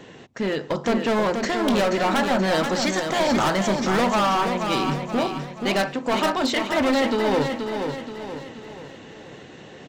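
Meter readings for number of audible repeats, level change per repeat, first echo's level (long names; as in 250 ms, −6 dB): 5, −6.5 dB, −6.0 dB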